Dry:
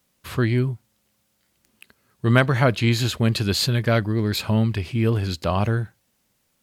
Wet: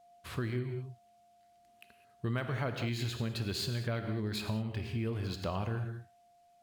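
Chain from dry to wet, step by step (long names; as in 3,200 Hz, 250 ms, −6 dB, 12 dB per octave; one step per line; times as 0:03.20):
steady tone 700 Hz −51 dBFS
reverb whose tail is shaped and stops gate 230 ms flat, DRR 7 dB
downward compressor 4 to 1, threshold −23 dBFS, peak gain reduction 11 dB
linearly interpolated sample-rate reduction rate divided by 2×
level −9 dB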